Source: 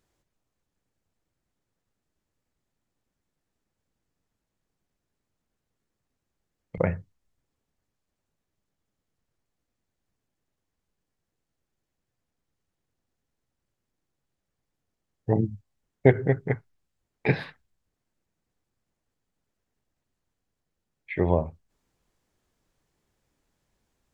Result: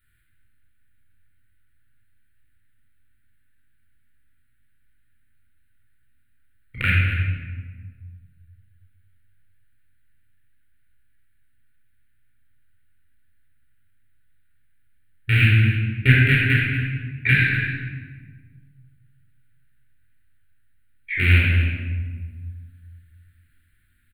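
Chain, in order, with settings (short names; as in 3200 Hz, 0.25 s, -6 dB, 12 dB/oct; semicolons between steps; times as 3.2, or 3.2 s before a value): rattling part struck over -25 dBFS, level -16 dBFS; EQ curve 110 Hz 0 dB, 170 Hz -17 dB, 240 Hz -4 dB, 490 Hz -29 dB, 1000 Hz -28 dB, 1500 Hz +8 dB, 4100 Hz -4 dB, 5900 Hz -30 dB, 9000 Hz +4 dB; on a send: echo 0.237 s -12 dB; on the sum: shoebox room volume 1400 m³, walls mixed, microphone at 4.5 m; gain +1.5 dB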